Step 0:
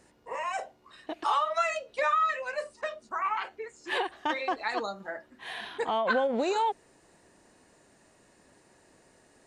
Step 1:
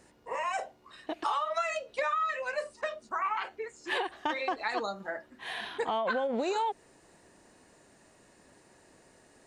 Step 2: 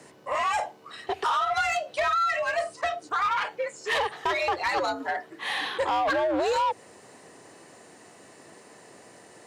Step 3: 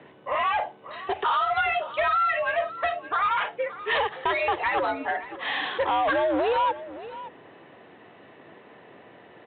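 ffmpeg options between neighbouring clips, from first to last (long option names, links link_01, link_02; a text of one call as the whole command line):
ffmpeg -i in.wav -af "acompressor=threshold=-28dB:ratio=6,volume=1dB" out.wav
ffmpeg -i in.wav -filter_complex "[0:a]asplit=2[link_01][link_02];[link_02]volume=33dB,asoftclip=hard,volume=-33dB,volume=-6dB[link_03];[link_01][link_03]amix=inputs=2:normalize=0,afreqshift=80,asoftclip=type=tanh:threshold=-25.5dB,volume=6dB" out.wav
ffmpeg -i in.wav -af "aecho=1:1:570:0.168,aresample=8000,aresample=44100,volume=1.5dB" out.wav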